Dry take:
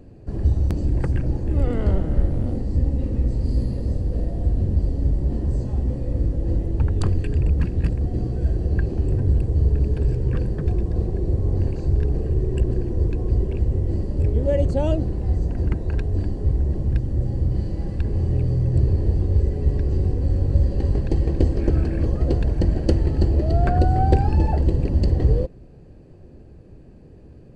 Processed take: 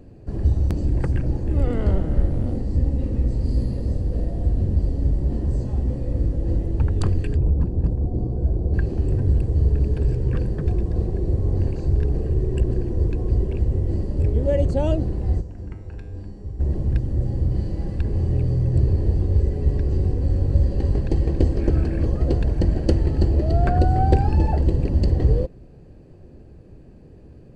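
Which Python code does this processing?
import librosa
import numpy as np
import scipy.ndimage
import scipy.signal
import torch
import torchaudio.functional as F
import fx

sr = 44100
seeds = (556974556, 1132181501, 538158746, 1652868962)

y = fx.curve_eq(x, sr, hz=(960.0, 2200.0, 4200.0), db=(0, -22, -13), at=(7.36, 8.74))
y = fx.comb_fb(y, sr, f0_hz=100.0, decay_s=0.91, harmonics='all', damping=0.0, mix_pct=80, at=(15.4, 16.59), fade=0.02)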